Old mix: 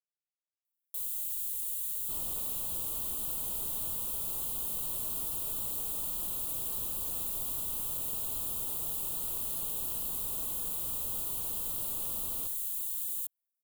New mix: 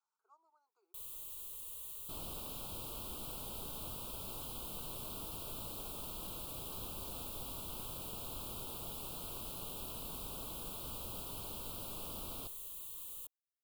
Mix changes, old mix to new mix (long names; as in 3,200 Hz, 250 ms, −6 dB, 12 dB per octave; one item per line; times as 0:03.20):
speech: unmuted
first sound: add bass and treble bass −4 dB, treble −12 dB